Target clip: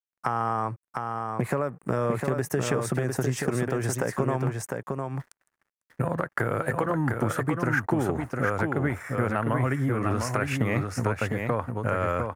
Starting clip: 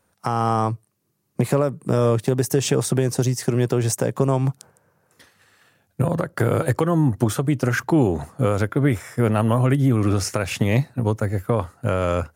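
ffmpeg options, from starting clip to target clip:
-filter_complex "[0:a]tiltshelf=f=970:g=-4.5,aeval=exprs='sgn(val(0))*max(abs(val(0))-0.00398,0)':c=same,highshelf=f=2500:t=q:w=1.5:g=-11,acompressor=threshold=0.0794:ratio=6,asplit=2[s0][s1];[s1]aecho=0:1:704:0.596[s2];[s0][s2]amix=inputs=2:normalize=0"

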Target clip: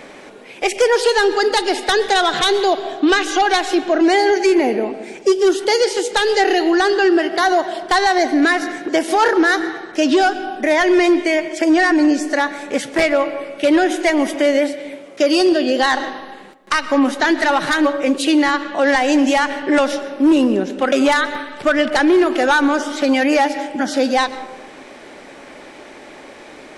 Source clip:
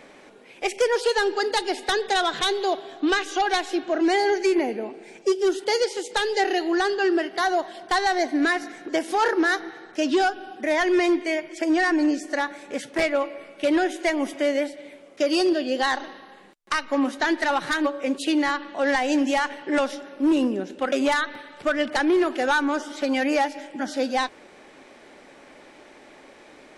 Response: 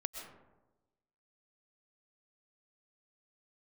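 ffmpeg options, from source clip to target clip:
-filter_complex "[0:a]asplit=2[s0][s1];[1:a]atrim=start_sample=2205[s2];[s1][s2]afir=irnorm=-1:irlink=0,volume=0.398[s3];[s0][s3]amix=inputs=2:normalize=0,alimiter=level_in=5.01:limit=0.891:release=50:level=0:latency=1,volume=0.473"

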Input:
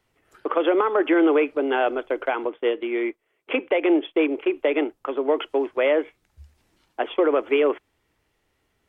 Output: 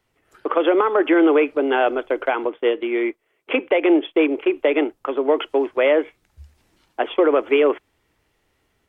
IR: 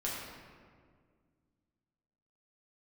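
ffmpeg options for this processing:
-af "dynaudnorm=f=260:g=3:m=1.5"

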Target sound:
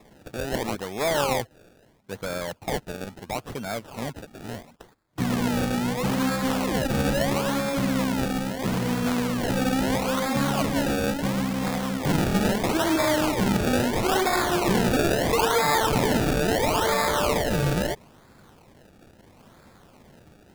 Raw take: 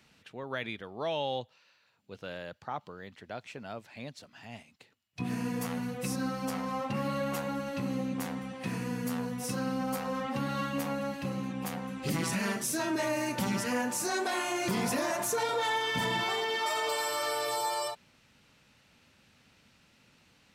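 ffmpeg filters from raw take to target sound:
-filter_complex "[0:a]asplit=2[s0][s1];[s1]aeval=exprs='(mod(37.6*val(0)+1,2)-1)/37.6':c=same,volume=0.355[s2];[s0][s2]amix=inputs=2:normalize=0,acrusher=samples=29:mix=1:aa=0.000001:lfo=1:lforange=29:lforate=0.75,volume=2.66"

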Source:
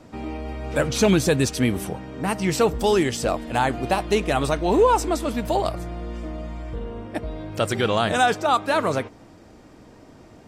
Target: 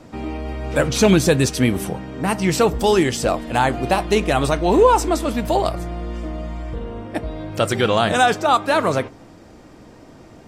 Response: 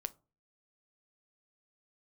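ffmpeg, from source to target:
-filter_complex "[0:a]asplit=2[s0][s1];[1:a]atrim=start_sample=2205,asetrate=52920,aresample=44100[s2];[s1][s2]afir=irnorm=-1:irlink=0,volume=2.37[s3];[s0][s3]amix=inputs=2:normalize=0,volume=0.596"

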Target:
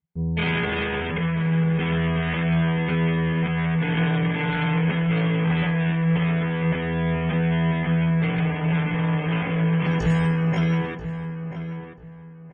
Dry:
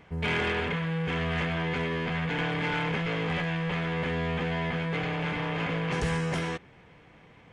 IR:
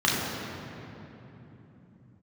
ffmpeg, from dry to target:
-filter_complex "[0:a]atempo=0.6,afftdn=nr=27:nf=-40,highshelf=f=5500:g=6,agate=range=0.126:threshold=0.00112:ratio=16:detection=peak,equalizer=f=170:t=o:w=0.48:g=7.5,asplit=2[s0][s1];[s1]adelay=986,lowpass=f=1800:p=1,volume=0.335,asplit=2[s2][s3];[s3]adelay=986,lowpass=f=1800:p=1,volume=0.27,asplit=2[s4][s5];[s5]adelay=986,lowpass=f=1800:p=1,volume=0.27[s6];[s0][s2][s4][s6]amix=inputs=4:normalize=0,volume=1.33"

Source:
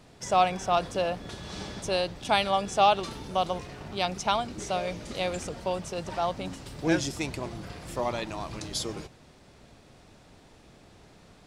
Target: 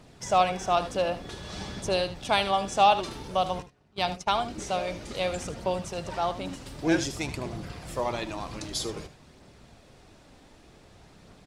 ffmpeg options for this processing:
-filter_complex "[0:a]asplit=3[s0][s1][s2];[s0]afade=t=out:st=3.61:d=0.02[s3];[s1]agate=range=0.0562:threshold=0.0224:ratio=16:detection=peak,afade=t=in:st=3.61:d=0.02,afade=t=out:st=4.36:d=0.02[s4];[s2]afade=t=in:st=4.36:d=0.02[s5];[s3][s4][s5]amix=inputs=3:normalize=0,aphaser=in_gain=1:out_gain=1:delay=4:decay=0.25:speed=0.53:type=triangular,asplit=2[s6][s7];[s7]aecho=0:1:76:0.224[s8];[s6][s8]amix=inputs=2:normalize=0"

